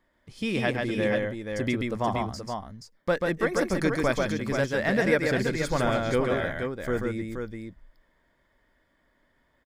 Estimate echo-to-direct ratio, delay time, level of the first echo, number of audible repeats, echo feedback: -1.5 dB, 137 ms, -3.5 dB, 2, no regular repeats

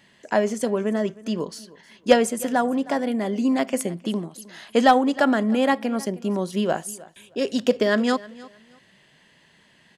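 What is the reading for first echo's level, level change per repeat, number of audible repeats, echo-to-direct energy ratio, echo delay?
-20.5 dB, -13.0 dB, 2, -20.5 dB, 312 ms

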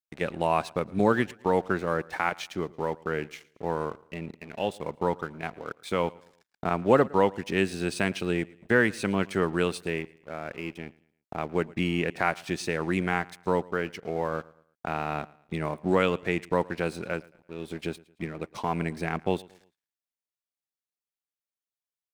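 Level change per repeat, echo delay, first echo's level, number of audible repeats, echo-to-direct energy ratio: -8.5 dB, 112 ms, -23.0 dB, 2, -22.5 dB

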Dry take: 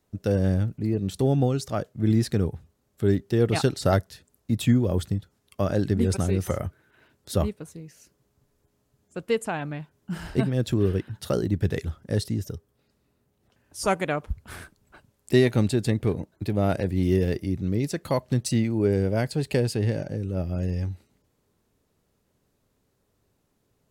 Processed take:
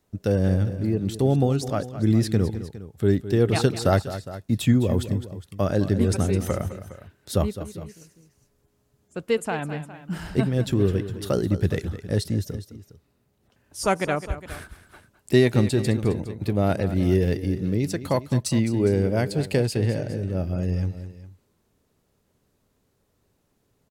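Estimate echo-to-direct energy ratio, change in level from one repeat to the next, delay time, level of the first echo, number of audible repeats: -11.5 dB, no regular repeats, 210 ms, -13.0 dB, 2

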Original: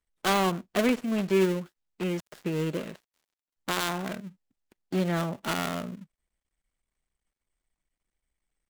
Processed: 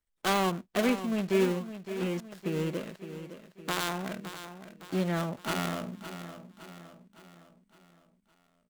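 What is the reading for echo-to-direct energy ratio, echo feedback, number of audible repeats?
-10.5 dB, 49%, 4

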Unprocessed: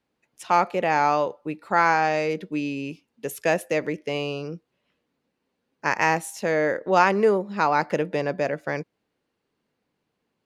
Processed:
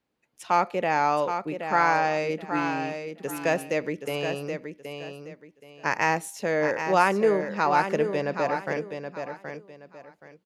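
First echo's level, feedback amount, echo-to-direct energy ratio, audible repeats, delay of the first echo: -7.5 dB, 26%, -7.0 dB, 3, 774 ms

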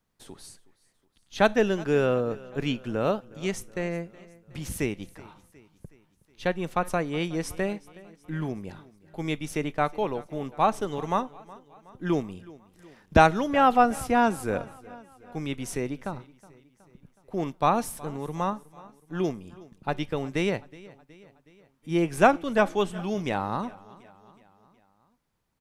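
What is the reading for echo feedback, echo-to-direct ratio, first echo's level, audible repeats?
55%, -19.5 dB, -21.0 dB, 3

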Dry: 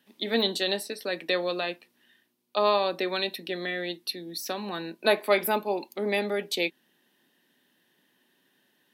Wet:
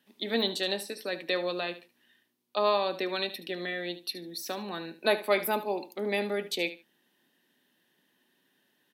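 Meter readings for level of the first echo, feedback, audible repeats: -14.0 dB, 18%, 2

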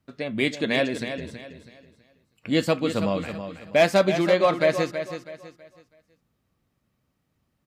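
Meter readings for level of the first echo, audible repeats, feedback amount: -9.5 dB, 3, 32%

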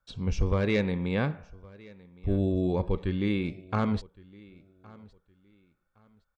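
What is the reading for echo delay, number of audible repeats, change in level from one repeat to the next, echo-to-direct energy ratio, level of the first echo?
1114 ms, 2, -11.5 dB, -22.5 dB, -23.0 dB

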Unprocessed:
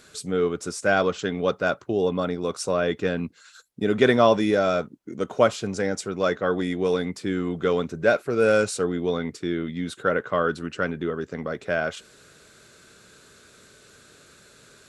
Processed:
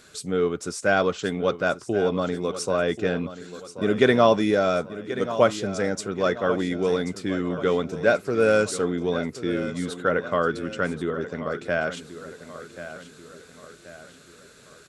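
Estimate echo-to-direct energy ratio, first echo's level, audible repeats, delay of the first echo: -12.0 dB, -13.0 dB, 4, 1083 ms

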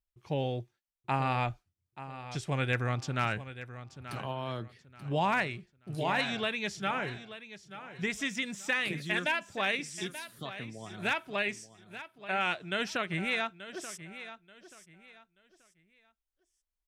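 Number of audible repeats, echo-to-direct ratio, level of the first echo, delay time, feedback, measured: 2, -13.0 dB, -13.5 dB, 882 ms, 28%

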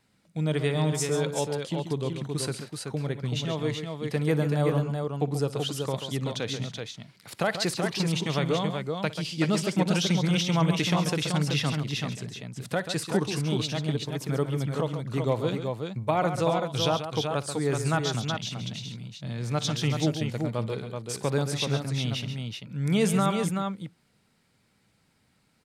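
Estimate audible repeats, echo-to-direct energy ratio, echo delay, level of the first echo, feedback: 3, -3.5 dB, 58 ms, -19.5 dB, no regular repeats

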